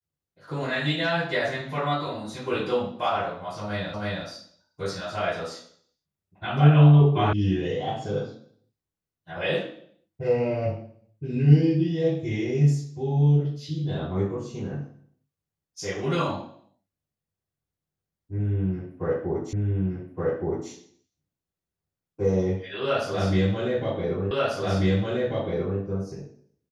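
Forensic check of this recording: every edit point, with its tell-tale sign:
3.94 repeat of the last 0.32 s
7.33 sound cut off
19.53 repeat of the last 1.17 s
24.31 repeat of the last 1.49 s

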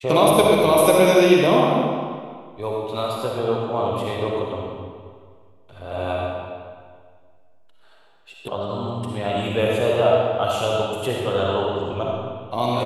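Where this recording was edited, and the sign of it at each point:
8.48 sound cut off

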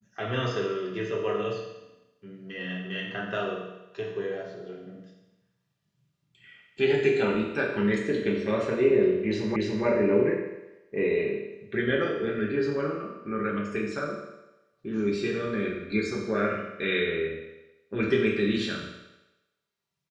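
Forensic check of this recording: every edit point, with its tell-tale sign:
9.56 repeat of the last 0.29 s

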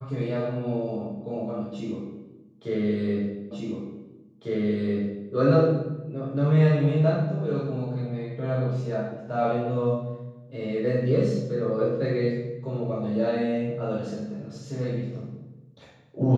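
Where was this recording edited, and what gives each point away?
3.51 repeat of the last 1.8 s

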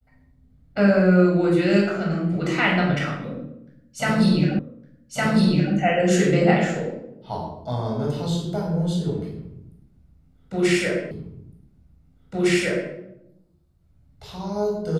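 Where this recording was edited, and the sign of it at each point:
4.59 repeat of the last 1.16 s
11.11 repeat of the last 1.81 s

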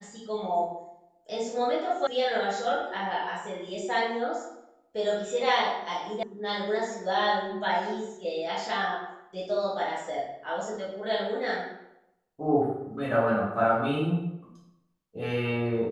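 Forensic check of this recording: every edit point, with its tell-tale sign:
2.07 sound cut off
6.23 sound cut off

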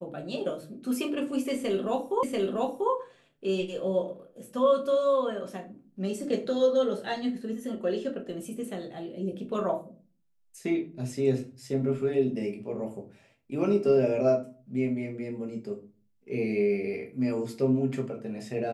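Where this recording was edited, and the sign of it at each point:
2.23 repeat of the last 0.69 s

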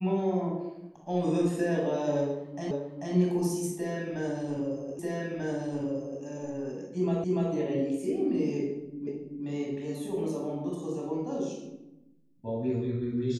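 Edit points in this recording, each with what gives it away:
2.71 repeat of the last 0.44 s
4.99 repeat of the last 1.24 s
7.24 repeat of the last 0.29 s
9.07 repeat of the last 0.38 s

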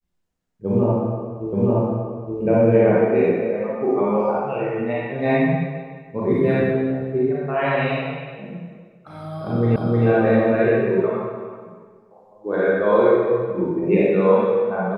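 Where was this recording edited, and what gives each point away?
1.53 repeat of the last 0.87 s
9.76 repeat of the last 0.31 s

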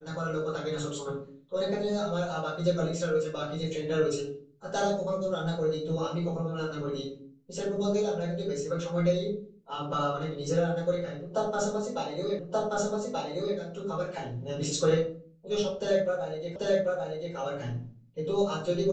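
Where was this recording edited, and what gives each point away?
12.39 repeat of the last 1.18 s
16.56 repeat of the last 0.79 s

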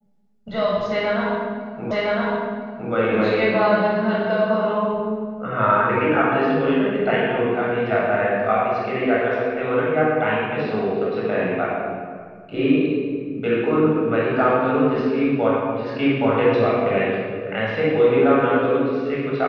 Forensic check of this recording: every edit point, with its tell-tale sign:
1.91 repeat of the last 1.01 s

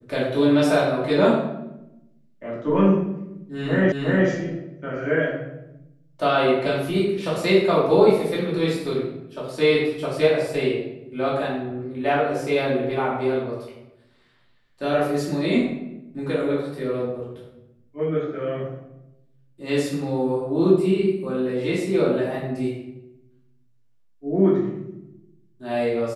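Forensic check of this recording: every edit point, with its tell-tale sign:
3.92 repeat of the last 0.36 s

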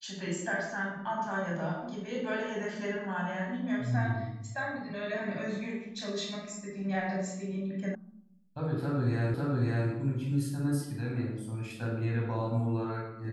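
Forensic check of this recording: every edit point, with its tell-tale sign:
7.95 sound cut off
9.34 repeat of the last 0.55 s

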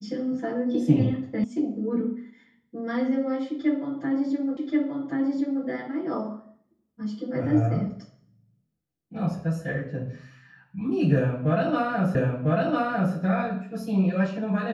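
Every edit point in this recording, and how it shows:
1.44 sound cut off
4.57 repeat of the last 1.08 s
12.15 repeat of the last 1 s

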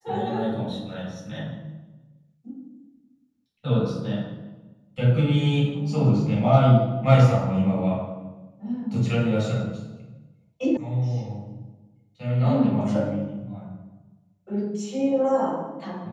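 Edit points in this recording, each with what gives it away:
10.77 sound cut off

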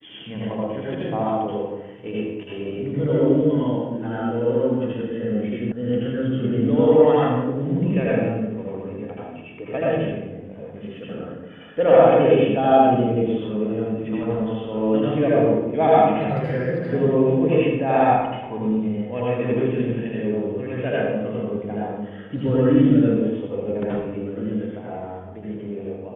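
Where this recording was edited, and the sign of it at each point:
5.72 sound cut off

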